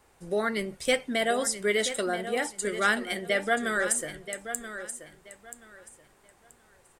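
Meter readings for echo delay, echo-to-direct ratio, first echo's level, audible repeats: 980 ms, -11.0 dB, -11.0 dB, 2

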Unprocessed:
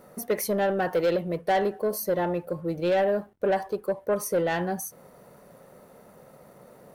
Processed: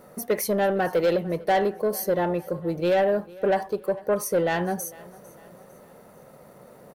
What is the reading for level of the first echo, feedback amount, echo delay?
-22.0 dB, 44%, 451 ms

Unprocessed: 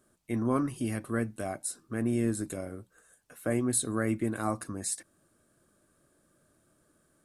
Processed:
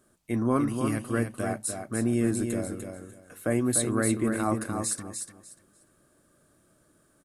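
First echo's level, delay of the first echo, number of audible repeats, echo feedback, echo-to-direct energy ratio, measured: -6.0 dB, 297 ms, 3, 21%, -6.0 dB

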